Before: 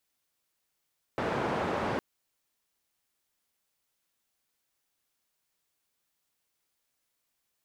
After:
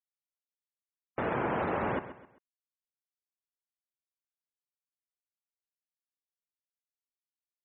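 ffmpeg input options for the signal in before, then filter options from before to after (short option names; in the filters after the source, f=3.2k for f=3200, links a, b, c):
-f lavfi -i "anoisesrc=c=white:d=0.81:r=44100:seed=1,highpass=f=99,lowpass=f=930,volume=-12.4dB"
-af "afftfilt=real='re*gte(hypot(re,im),0.0126)':imag='im*gte(hypot(re,im),0.0126)':win_size=1024:overlap=0.75,aecho=1:1:131|262|393:0.224|0.0761|0.0259"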